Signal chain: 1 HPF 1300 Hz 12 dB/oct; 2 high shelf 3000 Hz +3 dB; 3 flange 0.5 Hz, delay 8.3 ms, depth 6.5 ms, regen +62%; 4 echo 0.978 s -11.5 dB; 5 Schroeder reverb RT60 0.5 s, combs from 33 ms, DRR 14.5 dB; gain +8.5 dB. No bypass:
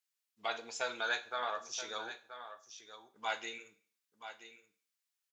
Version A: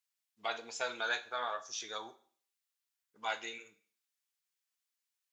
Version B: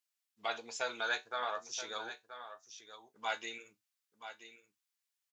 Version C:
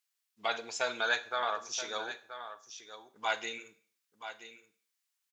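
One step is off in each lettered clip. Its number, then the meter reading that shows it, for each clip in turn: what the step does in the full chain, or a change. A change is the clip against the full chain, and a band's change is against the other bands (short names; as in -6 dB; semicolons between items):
4, echo-to-direct -9.5 dB to -14.5 dB; 5, echo-to-direct -9.5 dB to -11.5 dB; 3, loudness change +4.0 LU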